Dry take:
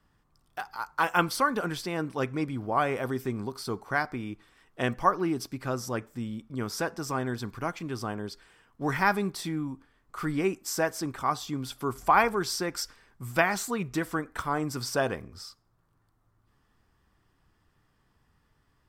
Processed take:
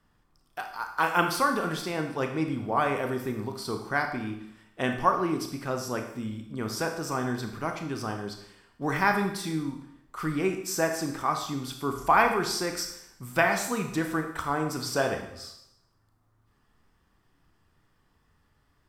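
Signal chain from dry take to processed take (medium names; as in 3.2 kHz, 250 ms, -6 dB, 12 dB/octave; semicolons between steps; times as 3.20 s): hum notches 60/120 Hz; wow and flutter 27 cents; Schroeder reverb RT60 0.75 s, combs from 25 ms, DRR 4.5 dB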